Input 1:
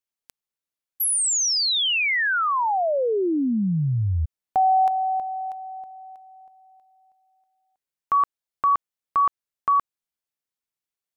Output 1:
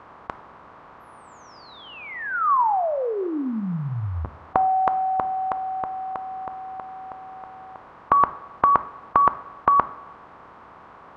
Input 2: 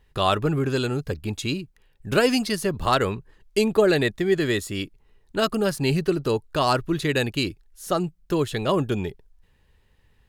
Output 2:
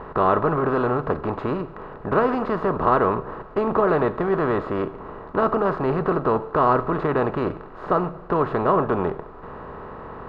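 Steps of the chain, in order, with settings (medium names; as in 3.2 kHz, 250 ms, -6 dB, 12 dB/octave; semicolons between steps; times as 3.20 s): spectral levelling over time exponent 0.4; resonant low-pass 1.1 kHz, resonance Q 2.6; two-slope reverb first 0.67 s, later 2.3 s, from -18 dB, DRR 11.5 dB; trim -6.5 dB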